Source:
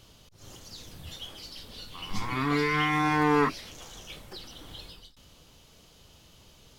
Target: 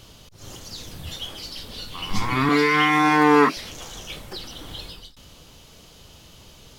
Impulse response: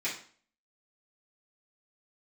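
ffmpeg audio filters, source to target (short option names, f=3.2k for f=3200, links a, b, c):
-filter_complex "[0:a]asettb=1/sr,asplit=3[a][b][c];[a]atrim=end=2.494[d];[b]atrim=start=2.49:end=3.57,asetpts=PTS-STARTPTS,afade=t=in:d=0.004:c=qsin,afade=t=out:st=1.076:d=0.004:c=qsin,highpass=f=180:w=0.5412,highpass=f=180:w=1.3066[e];[c]atrim=start=3.566[f];[d][e]acrossfade=d=0.004:c1=hsin:c2=qsin[g];[g][f]acrossfade=d=0.004:c1=qsin:c2=hsin,volume=8dB"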